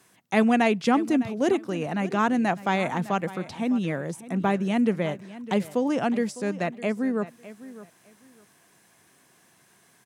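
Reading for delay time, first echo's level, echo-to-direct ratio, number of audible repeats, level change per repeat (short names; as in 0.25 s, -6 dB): 0.606 s, -16.5 dB, -16.5 dB, 2, -13.5 dB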